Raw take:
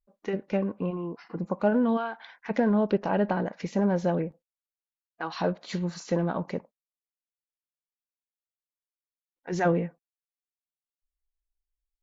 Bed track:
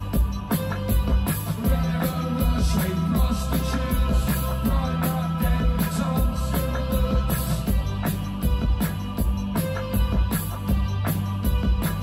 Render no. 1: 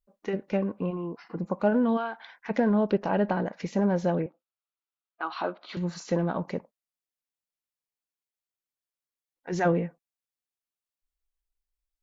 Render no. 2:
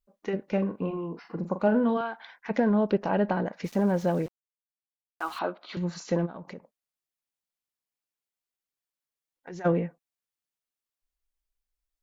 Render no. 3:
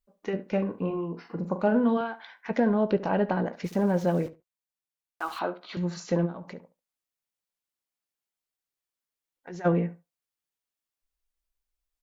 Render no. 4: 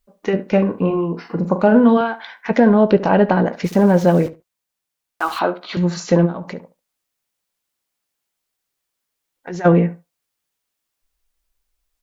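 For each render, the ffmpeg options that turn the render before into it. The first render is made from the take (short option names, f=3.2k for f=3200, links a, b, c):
-filter_complex "[0:a]asettb=1/sr,asplit=3[a][b][c];[a]atrim=end=4.264[d];[b]atrim=start=4.26:end=5.77,asetpts=PTS-STARTPTS,afade=t=in:d=0.004:c=qsin,afade=t=out:st=1.506:d=0.004:c=qsin,highpass=f=280:w=0.5412,highpass=f=280:w=1.3066,equalizer=f=480:t=q:w=4:g=-9,equalizer=f=1.3k:t=q:w=4:g=8,equalizer=f=1.8k:t=q:w=4:g=-7,lowpass=f=4k:w=0.5412,lowpass=f=4k:w=1.3066[e];[c]atrim=start=5.766[f];[d][e]acrossfade=d=0.004:c1=hsin:c2=qsin[g];[g][f]acrossfade=d=0.004:c1=qsin:c2=hsin"
-filter_complex "[0:a]asettb=1/sr,asplit=3[a][b][c];[a]atrim=end=0.524[d];[b]atrim=start=0.52:end=2.01,asetpts=PTS-STARTPTS,afade=t=in:d=0.004:c=qsin,afade=t=out:st=1.486:d=0.004:c=qsin,asplit=2[e][f];[f]adelay=42,volume=-9.5dB[g];[e][g]amix=inputs=2:normalize=0,atrim=end_sample=65709[h];[c]atrim=start=2.006[i];[d][h]acrossfade=d=0.004:c1=hsin:c2=qsin[j];[j][i]acrossfade=d=0.004:c1=qsin:c2=hsin,asettb=1/sr,asplit=3[k][l][m];[k]atrim=end=3.644[n];[l]atrim=start=3.64:end=5.39,asetpts=PTS-STARTPTS,afade=t=in:d=0.004:c=qsin,afade=t=out:st=1.746:d=0.004:c=qsin,aeval=exprs='val(0)*gte(abs(val(0)),0.00668)':c=same[o];[m]atrim=start=5.386[p];[n][o]acrossfade=d=0.004:c1=hsin:c2=qsin[q];[q][p]acrossfade=d=0.004:c1=qsin:c2=hsin,asplit=3[r][s][t];[r]afade=t=out:st=6.25:d=0.02[u];[s]acompressor=threshold=-38dB:ratio=5:attack=3.2:release=140:knee=1:detection=peak,afade=t=in:st=6.25:d=0.02,afade=t=out:st=9.64:d=0.02[v];[t]afade=t=in:st=9.64:d=0.02[w];[u][v][w]amix=inputs=3:normalize=0"
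-filter_complex "[0:a]asplit=2[a][b];[b]adelay=17,volume=-14dB[c];[a][c]amix=inputs=2:normalize=0,asplit=2[d][e];[e]adelay=70,lowpass=f=2.3k:p=1,volume=-15.5dB,asplit=2[f][g];[g]adelay=70,lowpass=f=2.3k:p=1,volume=0.16[h];[d][f][h]amix=inputs=3:normalize=0"
-af "volume=11.5dB,alimiter=limit=-2dB:level=0:latency=1"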